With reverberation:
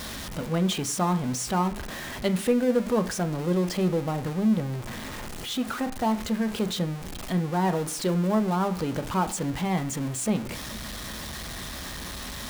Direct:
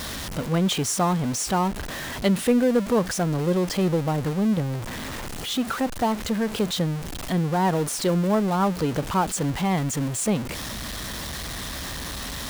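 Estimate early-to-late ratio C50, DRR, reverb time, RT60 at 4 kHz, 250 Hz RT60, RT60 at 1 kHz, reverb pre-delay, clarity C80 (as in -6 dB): 15.5 dB, 8.0 dB, 0.50 s, 0.50 s, 0.60 s, 0.50 s, 3 ms, 19.5 dB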